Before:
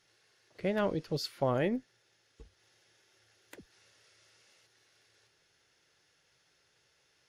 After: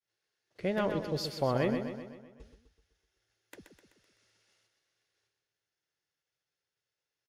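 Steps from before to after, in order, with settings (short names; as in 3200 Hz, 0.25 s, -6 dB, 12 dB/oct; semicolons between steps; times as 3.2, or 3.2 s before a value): expander -58 dBFS; feedback echo 0.127 s, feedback 54%, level -7.5 dB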